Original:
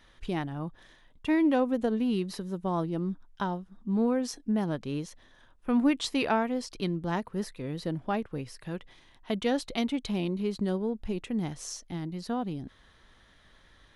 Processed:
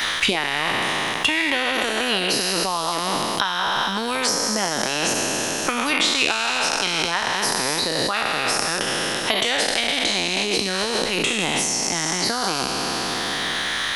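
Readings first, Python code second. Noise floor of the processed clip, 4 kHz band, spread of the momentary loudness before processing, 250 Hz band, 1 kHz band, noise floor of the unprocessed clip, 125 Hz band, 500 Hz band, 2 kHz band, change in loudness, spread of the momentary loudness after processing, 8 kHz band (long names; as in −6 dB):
−25 dBFS, +22.5 dB, 12 LU, −0.5 dB, +12.5 dB, −60 dBFS, 0.0 dB, +6.5 dB, +20.0 dB, +10.5 dB, 3 LU, +22.5 dB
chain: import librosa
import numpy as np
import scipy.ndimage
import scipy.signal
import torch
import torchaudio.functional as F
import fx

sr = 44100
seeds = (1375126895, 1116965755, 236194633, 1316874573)

p1 = fx.spec_trails(x, sr, decay_s=2.37)
p2 = fx.tilt_shelf(p1, sr, db=-9.5, hz=630.0)
p3 = fx.over_compress(p2, sr, threshold_db=-33.0, ratio=-1.0)
p4 = p2 + (p3 * 10.0 ** (-1.0 / 20.0))
p5 = fx.hpss(p4, sr, part='harmonic', gain_db=-10)
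p6 = fx.band_squash(p5, sr, depth_pct=100)
y = p6 * 10.0 ** (5.5 / 20.0)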